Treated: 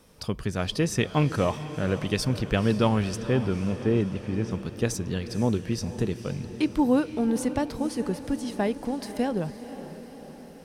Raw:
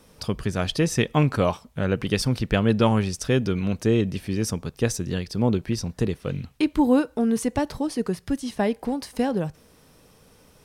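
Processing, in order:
0:03.18–0:04.51: low-pass filter 2,400 Hz 12 dB per octave
feedback delay with all-pass diffusion 501 ms, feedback 60%, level −12.5 dB
level −3 dB

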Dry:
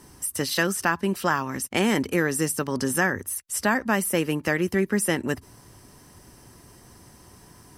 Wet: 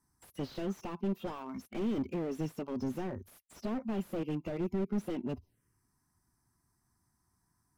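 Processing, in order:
noise reduction from a noise print of the clip's start 19 dB
phaser swept by the level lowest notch 500 Hz, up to 1,700 Hz, full sweep at −28 dBFS
slew-rate limiting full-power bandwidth 19 Hz
level −5.5 dB

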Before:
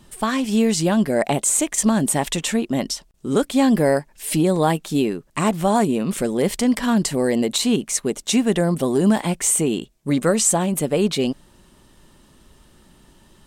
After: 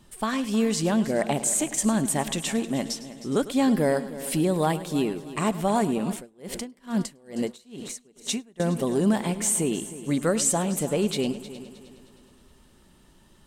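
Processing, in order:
echo machine with several playback heads 104 ms, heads first and third, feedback 52%, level −16 dB
0:06.12–0:08.60: tremolo with a sine in dB 2.3 Hz, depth 31 dB
level −5.5 dB

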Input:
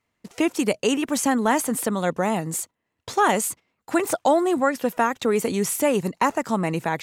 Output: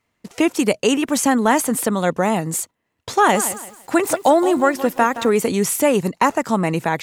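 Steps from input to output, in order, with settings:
0:03.12–0:05.33: feedback echo at a low word length 169 ms, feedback 35%, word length 7 bits, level −13 dB
level +4.5 dB

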